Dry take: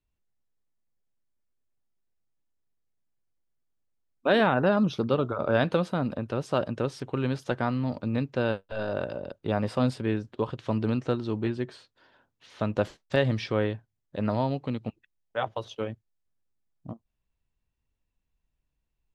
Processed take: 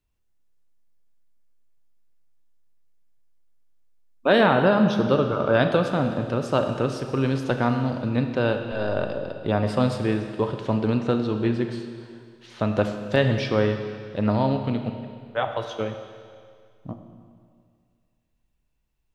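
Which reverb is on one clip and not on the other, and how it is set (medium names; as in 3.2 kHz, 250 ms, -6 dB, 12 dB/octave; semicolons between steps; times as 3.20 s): Schroeder reverb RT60 2.1 s, combs from 26 ms, DRR 6 dB; trim +4 dB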